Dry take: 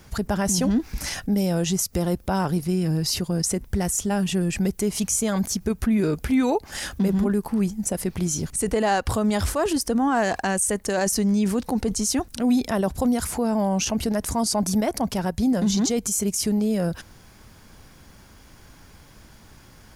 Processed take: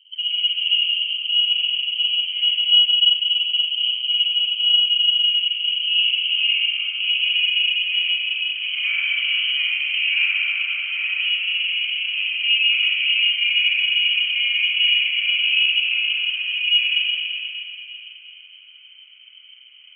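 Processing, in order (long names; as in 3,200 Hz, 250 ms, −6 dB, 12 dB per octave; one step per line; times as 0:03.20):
lower of the sound and its delayed copy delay 1.1 ms
low-pass filter sweep 300 Hz → 620 Hz, 0:05.22–0:07.43
four-comb reverb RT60 3.3 s, combs from 33 ms, DRR −7 dB
voice inversion scrambler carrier 3,100 Hz
level −5.5 dB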